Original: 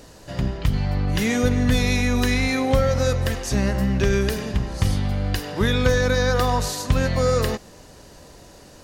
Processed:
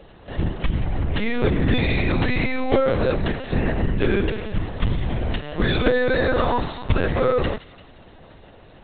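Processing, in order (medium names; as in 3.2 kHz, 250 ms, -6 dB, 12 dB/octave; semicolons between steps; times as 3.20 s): feedback echo behind a high-pass 175 ms, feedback 49%, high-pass 2.4 kHz, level -11.5 dB; LPC vocoder at 8 kHz pitch kept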